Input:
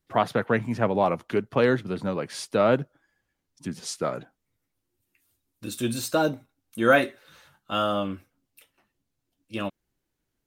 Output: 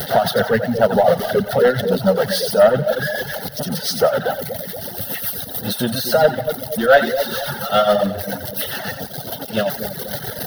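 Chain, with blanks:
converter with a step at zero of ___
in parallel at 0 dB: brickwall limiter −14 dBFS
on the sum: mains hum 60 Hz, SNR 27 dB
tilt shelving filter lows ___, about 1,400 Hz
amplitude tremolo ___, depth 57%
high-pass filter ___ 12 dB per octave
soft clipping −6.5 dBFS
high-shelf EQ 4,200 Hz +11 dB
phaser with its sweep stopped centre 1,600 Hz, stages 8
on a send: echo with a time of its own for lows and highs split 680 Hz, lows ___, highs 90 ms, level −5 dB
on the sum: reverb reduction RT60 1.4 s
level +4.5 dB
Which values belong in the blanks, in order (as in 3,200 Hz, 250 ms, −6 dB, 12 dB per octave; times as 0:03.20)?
−25 dBFS, +7.5 dB, 7.2 Hz, 200 Hz, 238 ms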